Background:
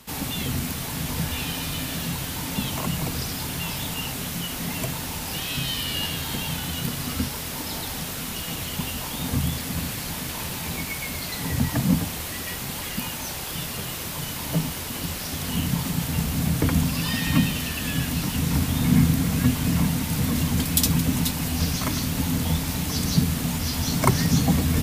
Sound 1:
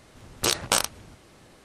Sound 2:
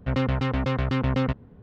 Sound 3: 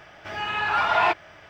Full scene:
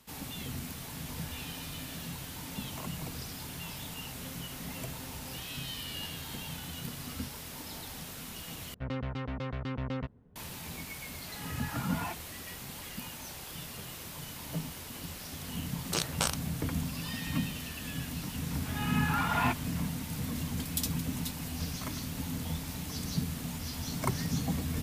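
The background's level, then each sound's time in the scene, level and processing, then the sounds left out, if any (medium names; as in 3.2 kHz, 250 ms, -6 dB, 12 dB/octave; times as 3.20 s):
background -12 dB
4.09 s: add 2 -12 dB + compression 2.5:1, threshold -42 dBFS
8.74 s: replace with 2 -11.5 dB
11.00 s: add 3 -16 dB + three-phase chorus
15.49 s: add 1 -8.5 dB
18.40 s: add 3 -9 dB + peaking EQ 640 Hz -6.5 dB 0.36 oct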